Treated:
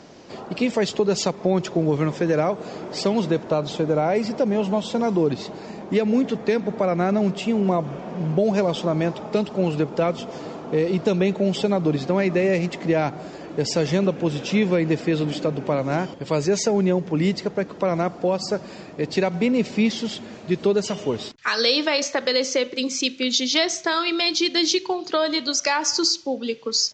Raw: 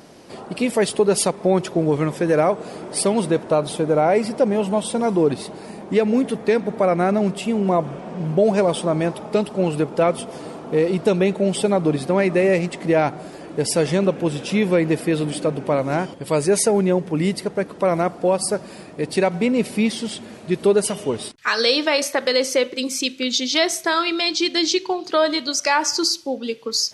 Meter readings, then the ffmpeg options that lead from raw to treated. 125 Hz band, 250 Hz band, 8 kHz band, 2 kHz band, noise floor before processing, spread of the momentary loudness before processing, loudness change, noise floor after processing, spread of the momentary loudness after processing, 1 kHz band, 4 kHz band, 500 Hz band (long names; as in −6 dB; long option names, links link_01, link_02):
−0.5 dB, −1.0 dB, −3.0 dB, −2.5 dB, −39 dBFS, 7 LU, −2.0 dB, −39 dBFS, 7 LU, −3.5 dB, −0.5 dB, −3.0 dB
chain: -filter_complex "[0:a]acrossover=split=260|3000[link_01][link_02][link_03];[link_02]acompressor=threshold=-22dB:ratio=2[link_04];[link_01][link_04][link_03]amix=inputs=3:normalize=0,aresample=16000,aresample=44100"